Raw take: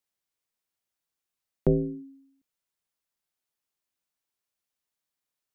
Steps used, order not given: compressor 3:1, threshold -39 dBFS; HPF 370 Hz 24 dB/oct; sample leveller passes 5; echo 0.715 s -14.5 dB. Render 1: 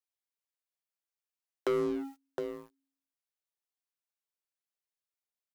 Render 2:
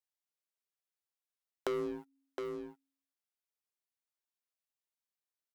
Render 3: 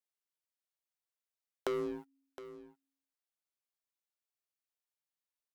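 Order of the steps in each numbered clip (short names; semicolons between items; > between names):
HPF > compressor > echo > sample leveller; HPF > sample leveller > echo > compressor; HPF > sample leveller > compressor > echo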